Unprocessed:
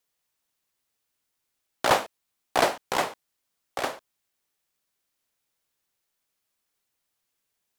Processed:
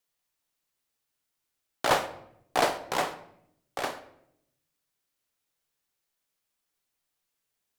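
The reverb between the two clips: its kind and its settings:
rectangular room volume 170 cubic metres, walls mixed, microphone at 0.36 metres
level −3 dB

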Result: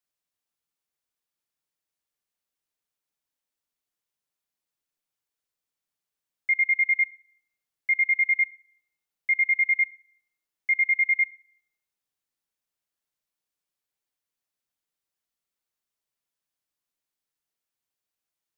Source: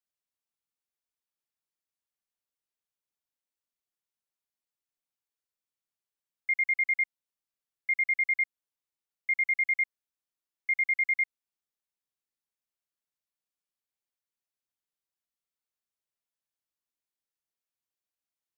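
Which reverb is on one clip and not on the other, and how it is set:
rectangular room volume 2,700 cubic metres, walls furnished, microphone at 0.44 metres
level +4 dB

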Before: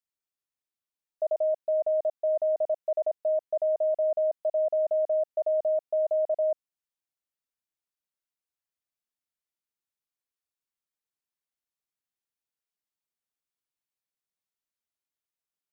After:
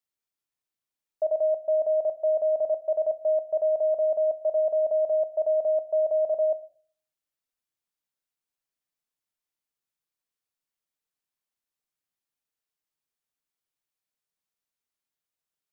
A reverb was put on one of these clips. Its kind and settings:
rectangular room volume 390 cubic metres, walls furnished, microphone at 0.49 metres
level +1.5 dB

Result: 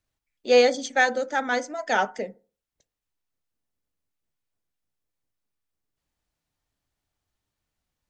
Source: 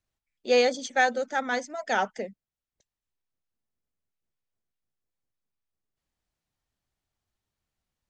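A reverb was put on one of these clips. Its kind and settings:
feedback delay network reverb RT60 0.37 s, low-frequency decay 1×, high-frequency decay 0.4×, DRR 12.5 dB
level +2.5 dB

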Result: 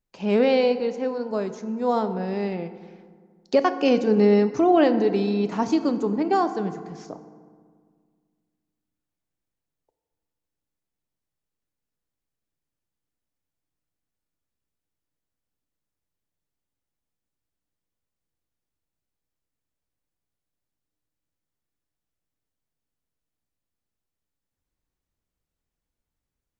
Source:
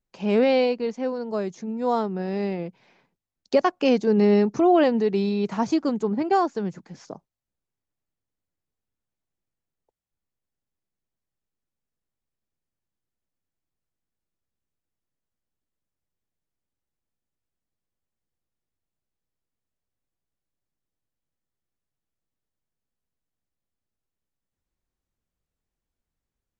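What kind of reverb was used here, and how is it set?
feedback delay network reverb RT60 1.8 s, low-frequency decay 1.3×, high-frequency decay 0.5×, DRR 9.5 dB

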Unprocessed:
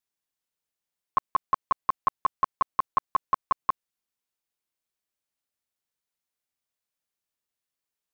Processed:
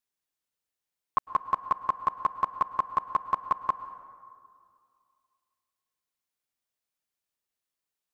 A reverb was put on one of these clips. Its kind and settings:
dense smooth reverb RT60 2.2 s, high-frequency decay 0.45×, pre-delay 95 ms, DRR 13 dB
level −1 dB

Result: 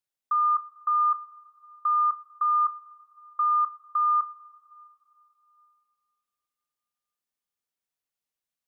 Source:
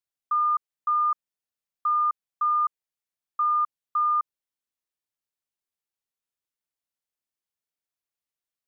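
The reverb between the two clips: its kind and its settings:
coupled-rooms reverb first 0.22 s, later 3.1 s, from −20 dB, DRR 9 dB

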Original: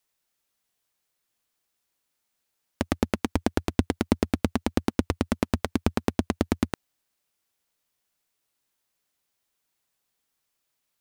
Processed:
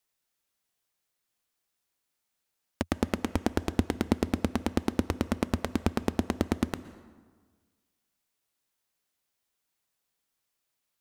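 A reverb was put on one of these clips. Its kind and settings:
dense smooth reverb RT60 1.5 s, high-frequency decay 0.6×, pre-delay 105 ms, DRR 14.5 dB
level −3 dB

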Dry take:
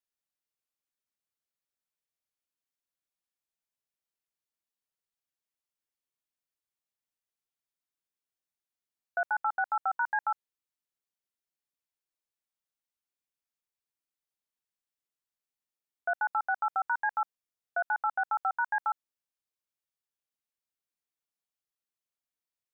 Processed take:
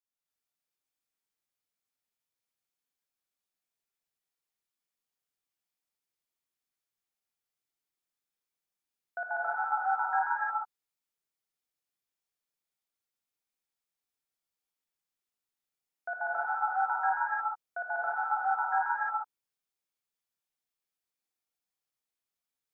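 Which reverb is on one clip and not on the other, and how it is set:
reverb whose tail is shaped and stops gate 330 ms rising, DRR −8 dB
level −7 dB

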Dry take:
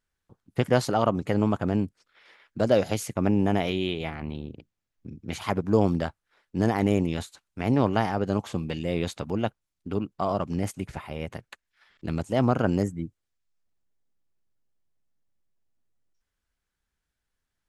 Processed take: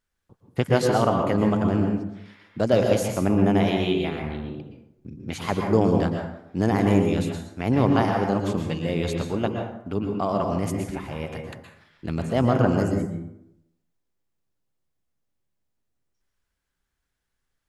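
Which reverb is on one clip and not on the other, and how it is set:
dense smooth reverb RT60 0.81 s, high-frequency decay 0.55×, pre-delay 105 ms, DRR 2.5 dB
level +1 dB

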